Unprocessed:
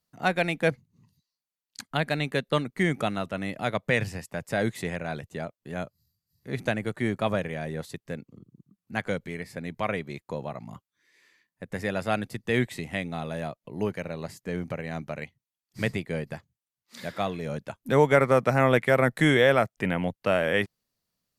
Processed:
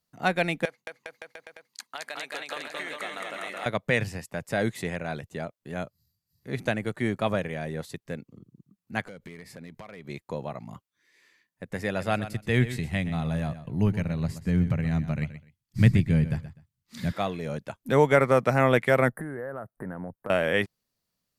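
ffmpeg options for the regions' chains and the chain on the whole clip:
-filter_complex "[0:a]asettb=1/sr,asplit=3[s0][s1][s2];[s0]atrim=end=0.654[s3];[s1]atrim=start=0.65:end=3.66,asetpts=PTS-STARTPTS,afade=t=in:d=0.004:c=qsin,afade=t=out:st=3.006:d=0.004:c=qsin,highpass=680,acompressor=threshold=0.0251:ratio=10:attack=3.2:release=140:knee=1:detection=peak,aecho=1:1:220|407|566|701.1|815.9|913.5:0.794|0.631|0.501|0.398|0.316|0.251,atrim=end_sample=132741[s4];[s2]atrim=start=3.656[s5];[s3][s4]acrossfade=d=0.004:c1=hsin:c2=qsin[s6];[s6][s5]acrossfade=d=0.004:c1=qsin:c2=hsin,asettb=1/sr,asplit=3[s7][s8][s9];[s7]atrim=end=9.044[s10];[s8]atrim=start=9.04:end=10.05,asetpts=PTS-STARTPTS,afade=t=in:d=0.004:c=qsin,afade=t=out:st=1.006:d=0.004:c=qsin,equalizer=f=100:w=5.4:g=-7,acompressor=threshold=0.0141:ratio=16:attack=3.2:release=140:knee=1:detection=peak,asoftclip=type=hard:threshold=0.0178[s11];[s9]atrim=start=10.046[s12];[s10][s11]acrossfade=d=0.004:c1=hsin:c2=qsin[s13];[s13][s12]acrossfade=d=0.004:c1=qsin:c2=hsin,asettb=1/sr,asplit=3[s14][s15][s16];[s14]atrim=end=11.874[s17];[s15]atrim=start=11.87:end=17.13,asetpts=PTS-STARTPTS,afade=t=in:d=0.004:c=qsin,afade=t=out:st=5.256:d=0.004:c=qsin,asubboost=boost=10:cutoff=170,aecho=1:1:125|250:0.224|0.0448,atrim=end_sample=231966[s18];[s16]atrim=start=17.126[s19];[s17][s18]acrossfade=d=0.004:c1=hsin:c2=qsin[s20];[s20][s19]acrossfade=d=0.004:c1=qsin:c2=hsin,asettb=1/sr,asplit=3[s21][s22][s23];[s21]atrim=end=19.114[s24];[s22]atrim=start=19.11:end=20.3,asetpts=PTS-STARTPTS,afade=t=in:d=0.004:c=qsin,afade=t=out:st=1.186:d=0.004:c=qsin,asuperstop=centerf=4200:order=12:qfactor=0.56,acompressor=threshold=0.0282:ratio=12:attack=3.2:release=140:knee=1:detection=peak[s25];[s23]atrim=start=20.296[s26];[s24][s25]acrossfade=d=0.004:c1=hsin:c2=qsin[s27];[s27][s26]acrossfade=d=0.004:c1=qsin:c2=hsin"

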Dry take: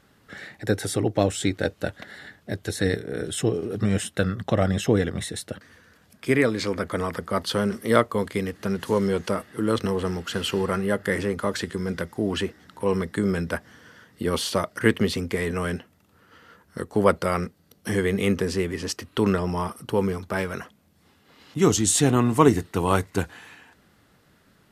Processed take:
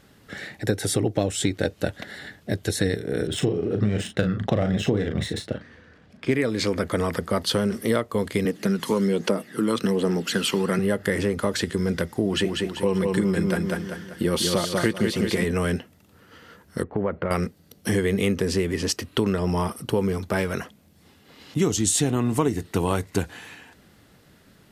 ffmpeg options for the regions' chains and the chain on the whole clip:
-filter_complex "[0:a]asettb=1/sr,asplit=3[s0][s1][s2];[s0]atrim=end=3.274[s3];[s1]atrim=start=3.27:end=6.34,asetpts=PTS-STARTPTS,afade=t=in:d=0.004:c=qsin,afade=t=out:st=3.066:d=0.004:c=qsin,adynamicsmooth=sensitivity=3:basefreq=3300,asplit=2[s4][s5];[s5]adelay=38,volume=0.447[s6];[s4][s6]amix=inputs=2:normalize=0,atrim=end_sample=135387[s7];[s2]atrim=start=6.336[s8];[s3][s7]acrossfade=d=0.004:c1=hsin:c2=qsin[s9];[s9][s8]acrossfade=d=0.004:c1=qsin:c2=hsin,asettb=1/sr,asplit=3[s10][s11][s12];[s10]atrim=end=8.454[s13];[s11]atrim=start=8.45:end=10.79,asetpts=PTS-STARTPTS,afade=t=in:d=0.004:c=qsin,afade=t=out:st=2.336:d=0.004:c=qsin,highpass=f=160:w=0.5412,highpass=f=160:w=1.3066,aphaser=in_gain=1:out_gain=1:delay=1:decay=0.47:speed=1.2:type=triangular[s14];[s12]atrim=start=10.786[s15];[s13][s14]acrossfade=d=0.004:c1=hsin:c2=qsin[s16];[s16][s15]acrossfade=d=0.004:c1=qsin:c2=hsin,asettb=1/sr,asplit=3[s17][s18][s19];[s17]atrim=end=12.254[s20];[s18]atrim=start=12.25:end=15.44,asetpts=PTS-STARTPTS,afade=t=in:d=0.004:c=qsin,afade=t=out:st=3.186:d=0.004:c=qsin,aecho=1:1:5.7:0.37,atrim=end_sample=140679,aecho=1:1:194|388|582|776|970:0.562|0.242|0.104|0.0447|0.0192,atrim=end_sample=140679[s21];[s19]atrim=start=15.436[s22];[s20][s21]acrossfade=d=0.004:c1=hsin:c2=qsin[s23];[s23][s22]acrossfade=d=0.004:c1=qsin:c2=hsin,asettb=1/sr,asplit=3[s24][s25][s26];[s24]atrim=end=16.834[s27];[s25]atrim=start=16.83:end=17.31,asetpts=PTS-STARTPTS,afade=t=in:d=0.004:c=qsin,afade=t=out:st=0.476:d=0.004:c=qsin,lowpass=f=2200:w=0.5412,lowpass=f=2200:w=1.3066,acompressor=threshold=0.0447:ratio=3:attack=3.2:release=140:knee=1:detection=peak[s28];[s26]atrim=start=17.306[s29];[s27][s28]acrossfade=d=0.004:c1=hsin:c2=qsin[s30];[s30][s29]acrossfade=d=0.004:c1=qsin:c2=hsin,equalizer=f=1200:t=o:w=1.2:g=-4.5,acompressor=threshold=0.0631:ratio=6,volume=1.88"

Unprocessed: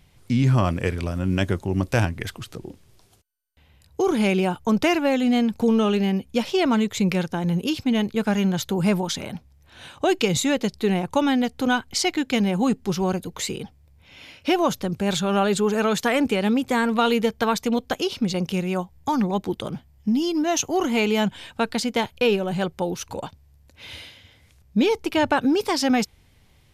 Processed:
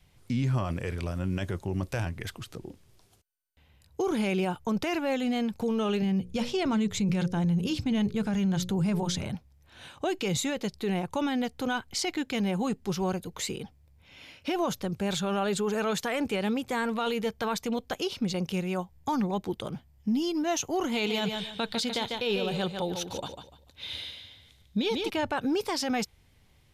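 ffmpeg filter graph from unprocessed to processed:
-filter_complex "[0:a]asettb=1/sr,asplit=3[s0][s1][s2];[s0]atrim=end=6.024[s3];[s1]atrim=start=6.02:end=9.35,asetpts=PTS-STARTPTS,afade=t=in:d=0.004:c=qsin,afade=t=out:st=3.326:d=0.004:c=qsin,lowpass=10000,bass=f=250:g=11,treble=f=4000:g=3,bandreject=f=60:t=h:w=6,bandreject=f=120:t=h:w=6,bandreject=f=180:t=h:w=6,bandreject=f=240:t=h:w=6,bandreject=f=300:t=h:w=6,bandreject=f=360:t=h:w=6,bandreject=f=420:t=h:w=6,bandreject=f=480:t=h:w=6,bandreject=f=540:t=h:w=6[s4];[s2]atrim=start=9.346[s5];[s3][s4]acrossfade=d=0.004:c1=hsin:c2=qsin[s6];[s6][s5]acrossfade=d=0.004:c1=qsin:c2=hsin,asettb=1/sr,asplit=3[s7][s8][s9];[s7]atrim=end=20.924[s10];[s8]atrim=start=20.92:end=25.1,asetpts=PTS-STARTPTS,afade=t=in:d=0.004:c=qsin,afade=t=out:st=4.176:d=0.004:c=qsin,equalizer=f=3700:t=o:w=0.44:g=12,aecho=1:1:147|294|441:0.398|0.107|0.029,atrim=end_sample=184338[s11];[s9]atrim=start=25.096[s12];[s10][s11]acrossfade=d=0.004:c1=hsin:c2=qsin[s13];[s13][s12]acrossfade=d=0.004:c1=qsin:c2=hsin,adynamicequalizer=threshold=0.0158:dfrequency=260:dqfactor=2.6:tfrequency=260:tqfactor=2.6:attack=5:release=100:ratio=0.375:range=2.5:mode=cutabove:tftype=bell,alimiter=limit=0.168:level=0:latency=1:release=14,volume=0.562"

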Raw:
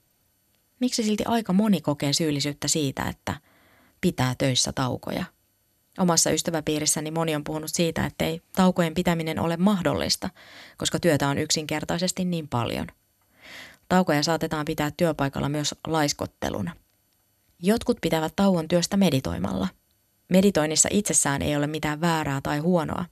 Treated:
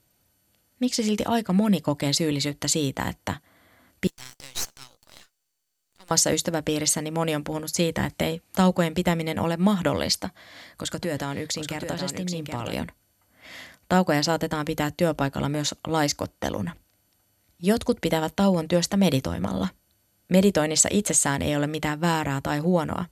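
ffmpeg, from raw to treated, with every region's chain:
-filter_complex "[0:a]asettb=1/sr,asplit=3[s0][s1][s2];[s0]atrim=end=4.074[s3];[s1]atrim=start=4.07:end=6.11,asetpts=PTS-STARTPTS,afade=t=in:d=0.004:c=qsin,afade=t=out:st=2.036:d=0.004:c=qsin,bandpass=f=6400:t=q:w=1.4,aeval=exprs='max(val(0),0)':c=same[s4];[s2]atrim=start=6.106[s5];[s3][s4]acrossfade=d=0.004:c1=hsin:c2=qsin[s6];[s6][s5]acrossfade=d=0.004:c1=qsin:c2=hsin,asettb=1/sr,asplit=3[s7][s8][s9];[s7]atrim=end=10.254[s10];[s8]atrim=start=10.25:end=12.73,asetpts=PTS-STARTPTS,afade=t=in:d=0.004:c=qsin,afade=t=out:st=2.476:d=0.004:c=qsin,acompressor=threshold=0.0355:ratio=2:attack=3.2:release=140:knee=1:detection=peak,aecho=1:1:775:0.473,atrim=end_sample=109368[s11];[s9]atrim=start=12.726[s12];[s10][s11]acrossfade=d=0.004:c1=hsin:c2=qsin[s13];[s13][s12]acrossfade=d=0.004:c1=qsin:c2=hsin"

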